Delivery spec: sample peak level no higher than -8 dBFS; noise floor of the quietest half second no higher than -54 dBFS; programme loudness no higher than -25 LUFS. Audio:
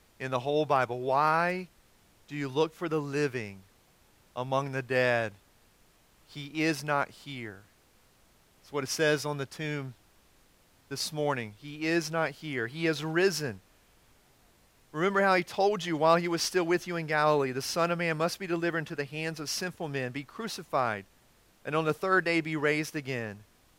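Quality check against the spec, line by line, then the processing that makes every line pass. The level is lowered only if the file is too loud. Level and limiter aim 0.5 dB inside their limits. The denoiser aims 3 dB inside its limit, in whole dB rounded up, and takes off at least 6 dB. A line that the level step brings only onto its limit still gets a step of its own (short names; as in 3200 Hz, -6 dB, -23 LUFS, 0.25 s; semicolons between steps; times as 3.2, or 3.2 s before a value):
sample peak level -10.0 dBFS: OK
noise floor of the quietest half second -63 dBFS: OK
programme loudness -29.5 LUFS: OK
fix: none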